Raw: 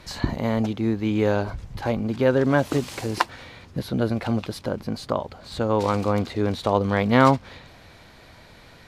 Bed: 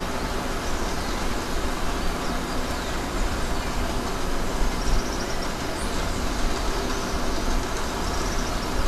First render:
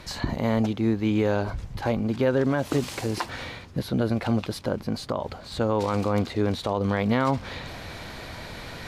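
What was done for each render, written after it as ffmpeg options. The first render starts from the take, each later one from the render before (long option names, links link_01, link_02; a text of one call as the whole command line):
ffmpeg -i in.wav -af "alimiter=limit=-13.5dB:level=0:latency=1:release=73,areverse,acompressor=mode=upward:threshold=-27dB:ratio=2.5,areverse" out.wav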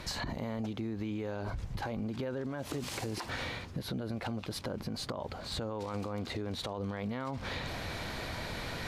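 ffmpeg -i in.wav -af "alimiter=limit=-24dB:level=0:latency=1:release=93,acompressor=threshold=-33dB:ratio=6" out.wav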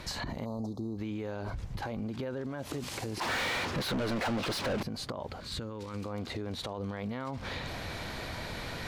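ffmpeg -i in.wav -filter_complex "[0:a]asplit=3[link_01][link_02][link_03];[link_01]afade=type=out:start_time=0.44:duration=0.02[link_04];[link_02]asuperstop=centerf=2200:order=12:qfactor=0.77,afade=type=in:start_time=0.44:duration=0.02,afade=type=out:start_time=0.97:duration=0.02[link_05];[link_03]afade=type=in:start_time=0.97:duration=0.02[link_06];[link_04][link_05][link_06]amix=inputs=3:normalize=0,asettb=1/sr,asplit=3[link_07][link_08][link_09];[link_07]atrim=end=3.214[link_10];[link_08]atrim=start=3.21:end=4.83,asetpts=PTS-STARTPTS,afade=type=in:duration=0.004:curve=qsin,afade=type=out:start_time=1.616:duration=0.004:curve=qsin,asplit=2[link_11][link_12];[link_12]highpass=frequency=720:poles=1,volume=32dB,asoftclip=type=tanh:threshold=-24.5dB[link_13];[link_11][link_13]amix=inputs=2:normalize=0,lowpass=frequency=3200:poles=1,volume=-6dB[link_14];[link_09]atrim=start=4.826[link_15];[link_10][link_14]acrossfade=duration=0.004:curve1=hsin:curve2=qsin[link_16];[link_16][link_15]acrossfade=duration=0.004:curve1=qsin:curve2=hsin,asettb=1/sr,asplit=3[link_17][link_18][link_19];[link_17]atrim=end=5.404[link_20];[link_18]atrim=start=5.4:end=6.05,asetpts=PTS-STARTPTS,afade=type=in:duration=0.004:curve=qsin,afade=type=out:start_time=0.646:duration=0.004:curve=qsin,equalizer=frequency=720:width=1.9:gain=-12.5[link_21];[link_19]atrim=start=6.046[link_22];[link_20][link_21]acrossfade=duration=0.004:curve1=hsin:curve2=qsin[link_23];[link_23][link_22]acrossfade=duration=0.004:curve1=qsin:curve2=hsin" out.wav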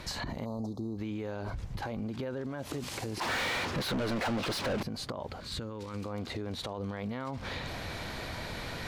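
ffmpeg -i in.wav -af anull out.wav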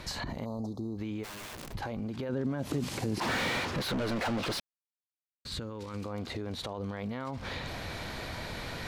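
ffmpeg -i in.wav -filter_complex "[0:a]asplit=3[link_01][link_02][link_03];[link_01]afade=type=out:start_time=1.23:duration=0.02[link_04];[link_02]aeval=exprs='(mod(89.1*val(0)+1,2)-1)/89.1':channel_layout=same,afade=type=in:start_time=1.23:duration=0.02,afade=type=out:start_time=1.72:duration=0.02[link_05];[link_03]afade=type=in:start_time=1.72:duration=0.02[link_06];[link_04][link_05][link_06]amix=inputs=3:normalize=0,asettb=1/sr,asplit=3[link_07][link_08][link_09];[link_07]atrim=end=2.294[link_10];[link_08]atrim=start=2.29:end=3.6,asetpts=PTS-STARTPTS,afade=type=in:duration=0.004:curve=qsin,afade=type=out:start_time=1.306:duration=0.004:curve=qsin,equalizer=frequency=190:width_type=o:width=1.8:gain=8.5[link_11];[link_09]atrim=start=3.596[link_12];[link_10][link_11]acrossfade=duration=0.004:curve1=hsin:curve2=qsin[link_13];[link_13][link_12]acrossfade=duration=0.004:curve1=qsin:curve2=hsin,asplit=3[link_14][link_15][link_16];[link_14]atrim=end=4.6,asetpts=PTS-STARTPTS,afade=type=out:start_time=4.596:duration=0.004:curve=hsin[link_17];[link_15]atrim=start=4.6:end=5.45,asetpts=PTS-STARTPTS,volume=0[link_18];[link_16]atrim=start=5.45,asetpts=PTS-STARTPTS,afade=type=in:duration=0.004:curve=hsin[link_19];[link_17][link_18][link_19]concat=n=3:v=0:a=1" out.wav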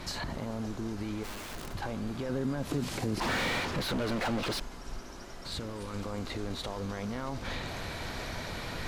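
ffmpeg -i in.wav -i bed.wav -filter_complex "[1:a]volume=-18.5dB[link_01];[0:a][link_01]amix=inputs=2:normalize=0" out.wav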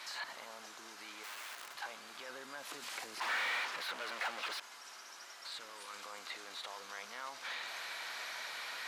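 ffmpeg -i in.wav -filter_complex "[0:a]acrossover=split=2600[link_01][link_02];[link_02]acompressor=threshold=-44dB:ratio=4:attack=1:release=60[link_03];[link_01][link_03]amix=inputs=2:normalize=0,highpass=1200" out.wav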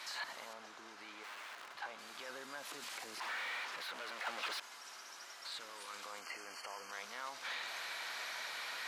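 ffmpeg -i in.wav -filter_complex "[0:a]asettb=1/sr,asplit=3[link_01][link_02][link_03];[link_01]atrim=end=0.534[link_04];[link_02]atrim=start=0.53:end=1.99,asetpts=PTS-STARTPTS,afade=type=in:duration=0.004:curve=qsin,afade=type=out:start_time=1.456:duration=0.004:curve=qsin,lowpass=frequency=2800:poles=1[link_05];[link_03]atrim=start=1.986[link_06];[link_04][link_05]acrossfade=duration=0.004:curve1=hsin:curve2=qsin[link_07];[link_07][link_06]acrossfade=duration=0.004:curve1=qsin:curve2=hsin,asettb=1/sr,asplit=3[link_08][link_09][link_10];[link_08]atrim=end=2.584[link_11];[link_09]atrim=start=2.58:end=4.27,asetpts=PTS-STARTPTS,afade=type=in:duration=0.004:curve=qsin,afade=type=out:start_time=1.686:duration=0.004:curve=qsin,acompressor=threshold=-43dB:ratio=2:attack=3.2:release=140:knee=1:detection=peak[link_12];[link_10]atrim=start=4.266[link_13];[link_11][link_12]acrossfade=duration=0.004:curve1=hsin:curve2=qsin[link_14];[link_14][link_13]acrossfade=duration=0.004:curve1=qsin:curve2=hsin,asplit=3[link_15][link_16][link_17];[link_15]afade=type=out:start_time=6.2:duration=0.02[link_18];[link_16]asuperstop=centerf=3700:order=20:qfactor=3.5,afade=type=in:start_time=6.2:duration=0.02,afade=type=out:start_time=6.91:duration=0.02[link_19];[link_17]afade=type=in:start_time=6.91:duration=0.02[link_20];[link_18][link_19][link_20]amix=inputs=3:normalize=0" out.wav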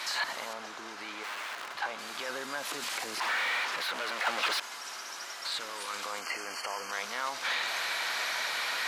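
ffmpeg -i in.wav -af "volume=11dB" out.wav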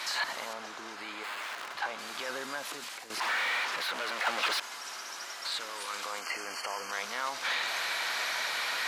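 ffmpeg -i in.wav -filter_complex "[0:a]asettb=1/sr,asplit=3[link_01][link_02][link_03];[link_01]atrim=end=0.964[link_04];[link_02]atrim=start=0.96:end=1.42,asetpts=PTS-STARTPTS,afade=type=in:duration=0.004:curve=qsin,afade=type=out:start_time=0.456:duration=0.004:curve=qsin,bandreject=frequency=5800:width=6.2[link_05];[link_03]atrim=start=1.416[link_06];[link_04][link_05]acrossfade=duration=0.004:curve1=hsin:curve2=qsin[link_07];[link_07][link_06]acrossfade=duration=0.004:curve1=qsin:curve2=hsin,asettb=1/sr,asplit=3[link_08][link_09][link_10];[link_08]atrim=end=5.574[link_11];[link_09]atrim=start=5.57:end=6.37,asetpts=PTS-STARTPTS,afade=type=in:duration=0.004:curve=qsin,afade=type=out:start_time=0.796:duration=0.004:curve=qsin,lowshelf=frequency=170:gain=-7.5[link_12];[link_10]atrim=start=6.366[link_13];[link_11][link_12]acrossfade=duration=0.004:curve1=hsin:curve2=qsin[link_14];[link_14][link_13]acrossfade=duration=0.004:curve1=qsin:curve2=hsin,asplit=2[link_15][link_16];[link_15]atrim=end=3.1,asetpts=PTS-STARTPTS,afade=type=out:start_time=2.47:duration=0.63:silence=0.237137[link_17];[link_16]atrim=start=3.1,asetpts=PTS-STARTPTS,afade=type=in:duration=0.004:curve=hsin:silence=0.237137[link_18];[link_17][link_18]concat=n=2:v=0:a=1" out.wav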